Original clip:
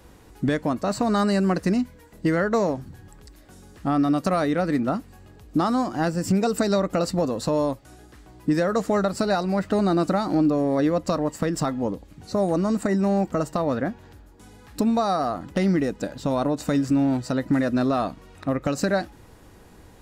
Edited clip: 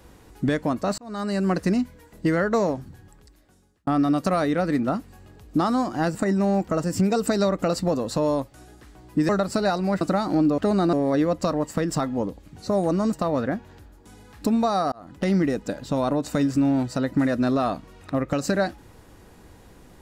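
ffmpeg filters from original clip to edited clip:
-filter_complex "[0:a]asplit=11[a][b][c][d][e][f][g][h][i][j][k];[a]atrim=end=0.98,asetpts=PTS-STARTPTS,afade=t=out:st=0.976:d=0.004:c=hsin[l];[b]atrim=start=0.98:end=3.87,asetpts=PTS-STARTPTS,afade=t=in:d=0.56,afade=t=out:st=1.71:d=1.18[m];[c]atrim=start=3.87:end=6.152,asetpts=PTS-STARTPTS,afade=t=in:d=0.004:c=hsin[n];[d]atrim=start=12.778:end=13.472[o];[e]atrim=start=6.148:end=8.602[p];[f]atrim=start=8.938:end=9.662[q];[g]atrim=start=10.008:end=10.582[r];[h]atrim=start=9.658:end=10.012[s];[i]atrim=start=10.578:end=12.782[t];[j]atrim=start=13.468:end=15.26,asetpts=PTS-STARTPTS,afade=t=out:st=1.788:d=0.004:c=hsin[u];[k]atrim=start=15.26,asetpts=PTS-STARTPTS,afade=t=in:d=0.38[v];[l][m][n]concat=n=3:v=0:a=1[w];[w][o]acrossfade=d=0.004:c1=hsin:c2=hsin[x];[x][p]acrossfade=d=0.004:c1=hsin:c2=hsin[y];[y][q]acrossfade=d=0.004:c1=hsin:c2=hsin[z];[z][r]acrossfade=d=0.004:c1=hsin:c2=hsin[aa];[aa][s]acrossfade=d=0.004:c1=hsin:c2=hsin[ab];[ab][t]acrossfade=d=0.004:c1=hsin:c2=hsin[ac];[u][v]concat=n=2:v=0:a=1[ad];[ac][ad]acrossfade=d=0.004:c1=hsin:c2=hsin"

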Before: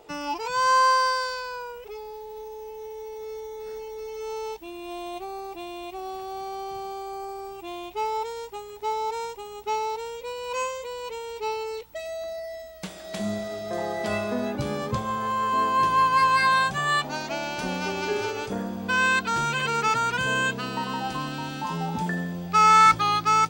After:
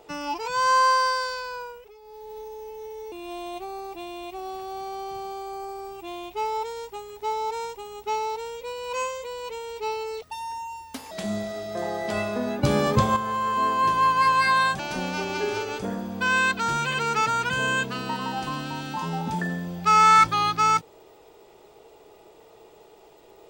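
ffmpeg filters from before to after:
-filter_complex "[0:a]asplit=9[a][b][c][d][e][f][g][h][i];[a]atrim=end=1.93,asetpts=PTS-STARTPTS,afade=t=out:st=1.62:d=0.31:silence=0.251189[j];[b]atrim=start=1.93:end=2.01,asetpts=PTS-STARTPTS,volume=-12dB[k];[c]atrim=start=2.01:end=3.122,asetpts=PTS-STARTPTS,afade=t=in:d=0.31:silence=0.251189[l];[d]atrim=start=4.718:end=11.824[m];[e]atrim=start=11.82:end=13.07,asetpts=PTS-STARTPTS,asetrate=61740,aresample=44100[n];[f]atrim=start=13.066:end=14.592[o];[g]atrim=start=14.588:end=15.122,asetpts=PTS-STARTPTS,volume=7.5dB[p];[h]atrim=start=15.118:end=16.752[q];[i]atrim=start=17.468[r];[j][k][l]concat=n=3:v=0:a=1[s];[s][m]acrossfade=d=0.004:c1=hsin:c2=hsin[t];[t][n]acrossfade=d=0.004:c1=hsin:c2=hsin[u];[u][o]acrossfade=d=0.004:c1=hsin:c2=hsin[v];[v][p]acrossfade=d=0.004:c1=hsin:c2=hsin[w];[w][q]acrossfade=d=0.004:c1=hsin:c2=hsin[x];[x][r]acrossfade=d=0.004:c1=hsin:c2=hsin"

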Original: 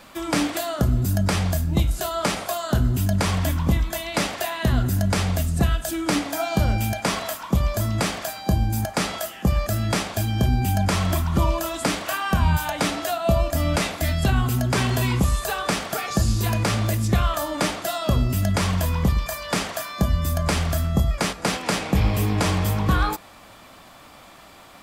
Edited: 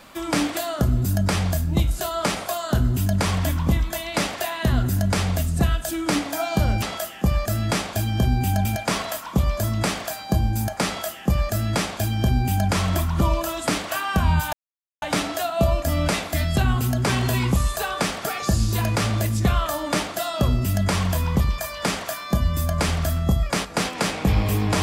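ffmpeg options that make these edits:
-filter_complex "[0:a]asplit=4[a][b][c][d];[a]atrim=end=6.822[e];[b]atrim=start=9.028:end=10.862[f];[c]atrim=start=6.818:end=12.7,asetpts=PTS-STARTPTS,afade=t=out:st=5.878:d=0.004:c=hsin,apad=pad_dur=0.49[g];[d]atrim=start=12.7,asetpts=PTS-STARTPTS,afade=t=in:d=0.004:c=hsin[h];[e][f]acrossfade=d=0.004:c1=hsin:c2=hsin[i];[g][h]concat=n=2:v=0:a=1[j];[i][j]acrossfade=d=0.004:c1=hsin:c2=hsin"

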